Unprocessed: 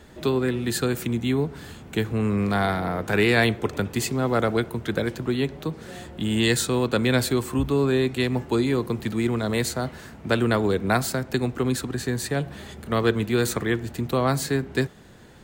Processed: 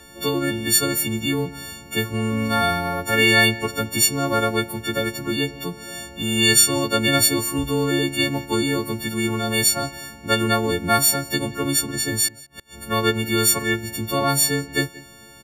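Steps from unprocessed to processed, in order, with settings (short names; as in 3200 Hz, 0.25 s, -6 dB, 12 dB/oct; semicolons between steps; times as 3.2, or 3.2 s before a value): frequency quantiser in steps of 4 st; 12.28–12.77 flipped gate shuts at -24 dBFS, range -29 dB; outdoor echo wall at 31 m, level -20 dB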